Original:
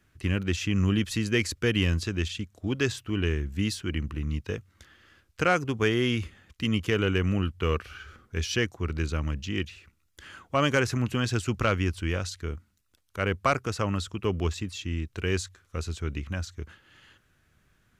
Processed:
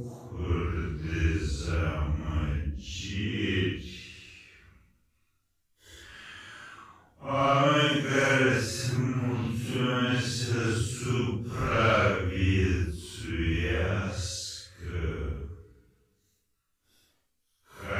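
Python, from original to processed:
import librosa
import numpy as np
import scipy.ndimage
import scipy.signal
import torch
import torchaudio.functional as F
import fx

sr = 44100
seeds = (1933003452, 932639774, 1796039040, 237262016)

y = fx.hum_notches(x, sr, base_hz=60, count=9)
y = fx.paulstretch(y, sr, seeds[0], factor=4.0, window_s=0.1, from_s=8.7)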